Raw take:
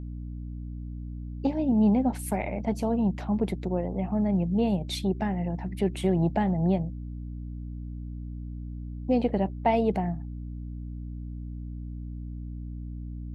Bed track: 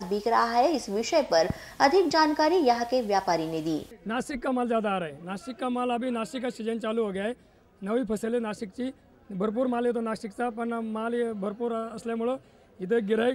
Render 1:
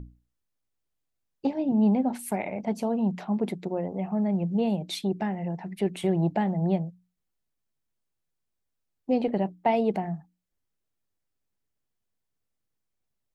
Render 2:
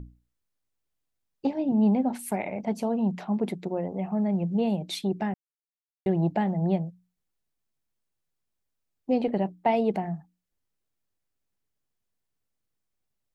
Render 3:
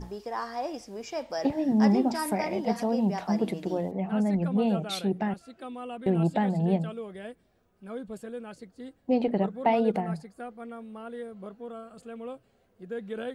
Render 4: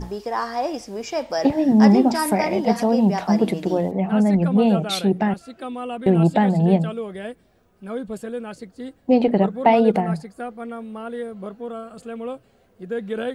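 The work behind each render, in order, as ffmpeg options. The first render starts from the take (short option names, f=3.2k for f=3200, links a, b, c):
-af "bandreject=f=60:t=h:w=6,bandreject=f=120:t=h:w=6,bandreject=f=180:t=h:w=6,bandreject=f=240:t=h:w=6,bandreject=f=300:t=h:w=6"
-filter_complex "[0:a]asplit=3[a][b][c];[a]atrim=end=5.34,asetpts=PTS-STARTPTS,afade=t=out:st=5.336:d=0.004:c=hsin[d];[b]atrim=start=5.34:end=6.06,asetpts=PTS-STARTPTS,volume=0[e];[c]atrim=start=6.06,asetpts=PTS-STARTPTS,afade=t=in:d=0.004:c=hsin[f];[d][e][f]concat=n=3:v=0:a=1"
-filter_complex "[1:a]volume=-10.5dB[a];[0:a][a]amix=inputs=2:normalize=0"
-af "volume=8.5dB"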